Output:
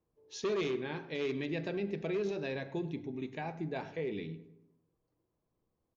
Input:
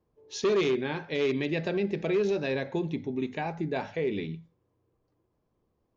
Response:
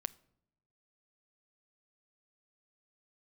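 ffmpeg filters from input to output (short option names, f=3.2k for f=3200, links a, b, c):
-filter_complex "[0:a]asplit=2[a][b];[b]adelay=103,lowpass=f=1.9k:p=1,volume=-14.5dB,asplit=2[c][d];[d]adelay=103,lowpass=f=1.9k:p=1,volume=0.53,asplit=2[e][f];[f]adelay=103,lowpass=f=1.9k:p=1,volume=0.53,asplit=2[g][h];[h]adelay=103,lowpass=f=1.9k:p=1,volume=0.53,asplit=2[i][j];[j]adelay=103,lowpass=f=1.9k:p=1,volume=0.53[k];[a][c][e][g][i][k]amix=inputs=6:normalize=0[l];[1:a]atrim=start_sample=2205,asetrate=48510,aresample=44100[m];[l][m]afir=irnorm=-1:irlink=0,volume=-5dB"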